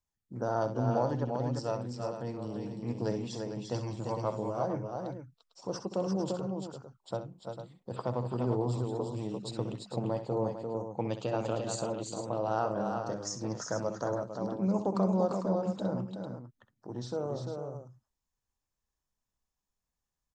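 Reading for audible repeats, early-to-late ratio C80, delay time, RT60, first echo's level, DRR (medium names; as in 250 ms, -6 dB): 3, no reverb, 64 ms, no reverb, -11.0 dB, no reverb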